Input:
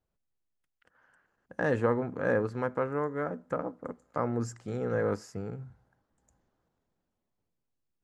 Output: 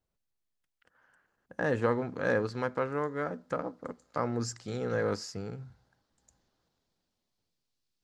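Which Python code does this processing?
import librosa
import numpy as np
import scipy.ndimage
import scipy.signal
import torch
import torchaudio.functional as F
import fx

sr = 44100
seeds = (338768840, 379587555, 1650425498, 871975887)

y = fx.peak_eq(x, sr, hz=4500.0, db=fx.steps((0.0, 3.5), (1.82, 14.5)), octaves=1.4)
y = F.gain(torch.from_numpy(y), -1.5).numpy()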